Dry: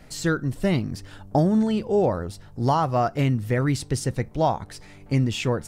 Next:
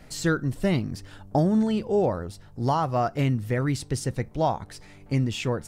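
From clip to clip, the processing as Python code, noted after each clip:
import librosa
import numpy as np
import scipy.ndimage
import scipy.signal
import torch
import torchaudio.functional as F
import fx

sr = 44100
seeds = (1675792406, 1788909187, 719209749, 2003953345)

y = fx.rider(x, sr, range_db=10, speed_s=2.0)
y = y * 10.0 ** (-3.0 / 20.0)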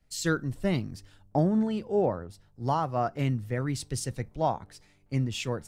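y = fx.band_widen(x, sr, depth_pct=70)
y = y * 10.0 ** (-4.0 / 20.0)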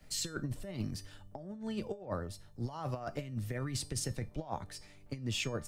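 y = fx.over_compress(x, sr, threshold_db=-32.0, ratio=-0.5)
y = fx.comb_fb(y, sr, f0_hz=600.0, decay_s=0.3, harmonics='all', damping=0.0, mix_pct=70)
y = fx.band_squash(y, sr, depth_pct=40)
y = y * 10.0 ** (5.0 / 20.0)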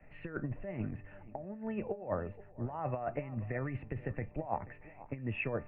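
y = scipy.signal.sosfilt(scipy.signal.cheby1(6, 6, 2700.0, 'lowpass', fs=sr, output='sos'), x)
y = y + 10.0 ** (-17.5 / 20.0) * np.pad(y, (int(483 * sr / 1000.0), 0))[:len(y)]
y = y * 10.0 ** (5.0 / 20.0)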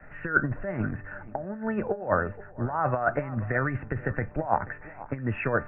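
y = fx.lowpass_res(x, sr, hz=1500.0, q=6.3)
y = y * 10.0 ** (8.0 / 20.0)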